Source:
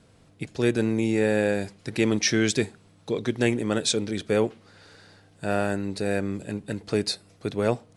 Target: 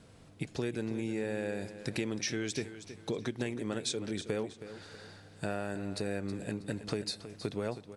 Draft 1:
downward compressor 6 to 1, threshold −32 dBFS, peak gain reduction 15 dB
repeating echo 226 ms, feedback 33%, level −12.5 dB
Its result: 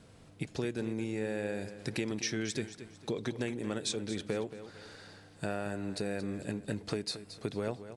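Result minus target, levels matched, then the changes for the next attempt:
echo 94 ms early
change: repeating echo 320 ms, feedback 33%, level −12.5 dB

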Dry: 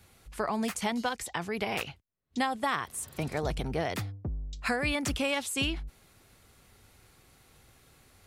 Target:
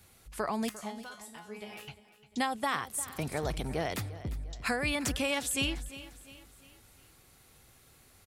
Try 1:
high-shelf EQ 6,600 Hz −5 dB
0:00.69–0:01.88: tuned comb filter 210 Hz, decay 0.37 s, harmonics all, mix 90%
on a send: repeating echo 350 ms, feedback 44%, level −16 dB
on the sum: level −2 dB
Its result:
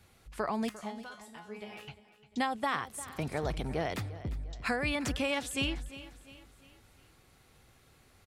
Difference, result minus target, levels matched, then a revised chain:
8,000 Hz band −6.0 dB
high-shelf EQ 6,600 Hz +6.5 dB
0:00.69–0:01.88: tuned comb filter 210 Hz, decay 0.37 s, harmonics all, mix 90%
on a send: repeating echo 350 ms, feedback 44%, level −16 dB
on the sum: level −2 dB

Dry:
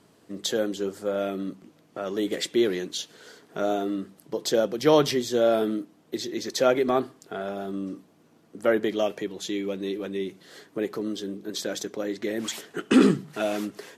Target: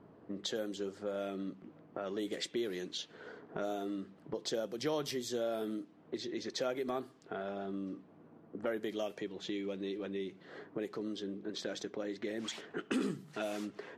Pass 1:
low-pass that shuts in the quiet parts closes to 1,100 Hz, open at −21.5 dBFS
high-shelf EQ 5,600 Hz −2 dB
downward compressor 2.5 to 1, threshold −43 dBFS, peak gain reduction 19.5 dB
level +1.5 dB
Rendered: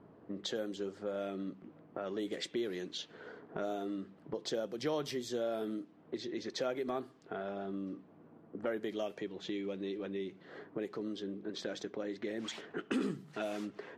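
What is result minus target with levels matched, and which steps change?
8,000 Hz band −3.0 dB
change: high-shelf EQ 5,600 Hz +5 dB

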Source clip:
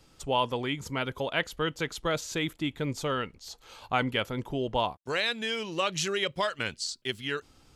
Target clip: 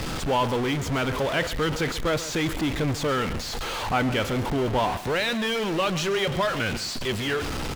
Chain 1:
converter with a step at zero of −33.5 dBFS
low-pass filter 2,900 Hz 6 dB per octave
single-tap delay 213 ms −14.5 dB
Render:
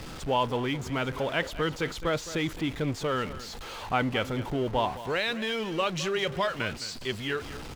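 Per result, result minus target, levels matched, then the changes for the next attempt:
echo 78 ms late; converter with a step at zero: distortion −7 dB
change: single-tap delay 135 ms −14.5 dB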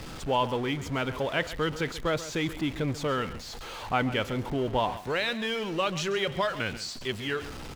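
converter with a step at zero: distortion −7 dB
change: converter with a step at zero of −22.5 dBFS

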